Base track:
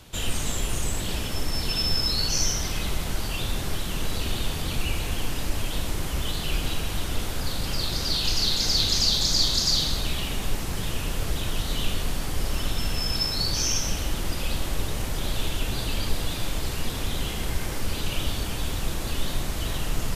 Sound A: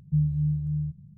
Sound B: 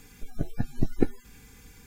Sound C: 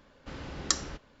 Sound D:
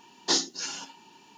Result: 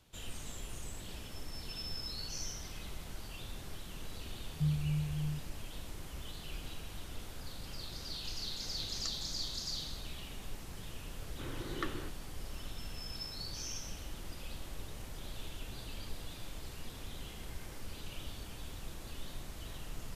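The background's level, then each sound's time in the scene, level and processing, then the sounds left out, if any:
base track -17 dB
4.48 s: add A -8.5 dB
8.35 s: add C -17.5 dB
11.12 s: add C -3 dB + cabinet simulation 100–2400 Hz, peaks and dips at 120 Hz +9 dB, 180 Hz -10 dB, 350 Hz +9 dB, 690 Hz -10 dB
not used: B, D

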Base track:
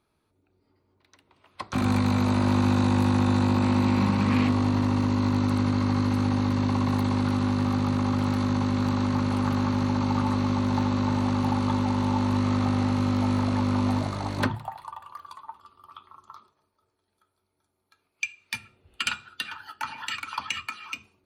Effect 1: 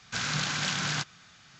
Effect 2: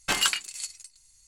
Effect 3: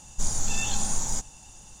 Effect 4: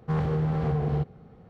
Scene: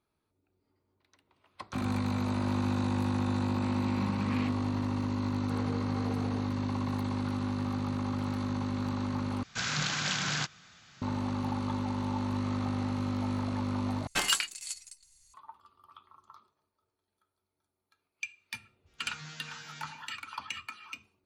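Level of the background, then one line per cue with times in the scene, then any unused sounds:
base track -8 dB
5.41 s: add 4 -8.5 dB + high-pass 340 Hz
9.43 s: replace with 1 -1.5 dB
14.07 s: replace with 2 -3.5 dB
18.86 s: add 1 -1 dB + chord resonator D#3 fifth, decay 0.5 s
not used: 3

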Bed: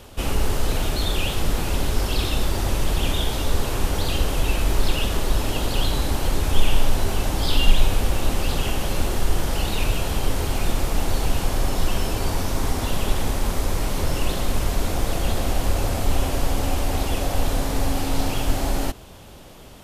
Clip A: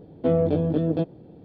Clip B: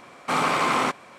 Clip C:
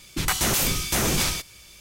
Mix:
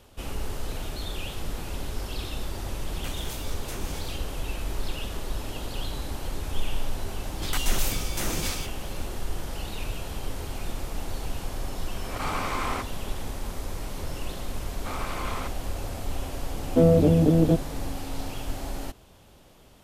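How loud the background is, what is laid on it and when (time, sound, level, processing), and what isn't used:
bed -10.5 dB
2.76 s: add C -16 dB + rotary cabinet horn 5 Hz
7.25 s: add C -8 dB
11.91 s: add B -8.5 dB + swell ahead of each attack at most 83 dB/s
14.57 s: add B -13 dB
16.52 s: add A -0.5 dB + bass shelf 380 Hz +6.5 dB

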